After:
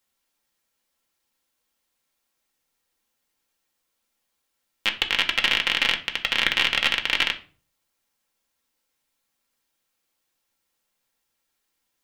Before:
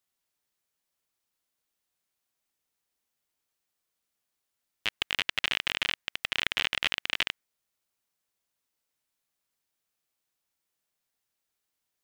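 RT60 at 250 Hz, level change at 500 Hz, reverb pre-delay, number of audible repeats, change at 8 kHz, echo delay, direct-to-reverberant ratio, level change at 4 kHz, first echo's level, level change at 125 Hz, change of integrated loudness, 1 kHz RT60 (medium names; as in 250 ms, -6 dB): 0.50 s, +7.5 dB, 4 ms, no echo, +6.0 dB, no echo, 1.5 dB, +7.5 dB, no echo, +5.5 dB, +7.5 dB, 0.40 s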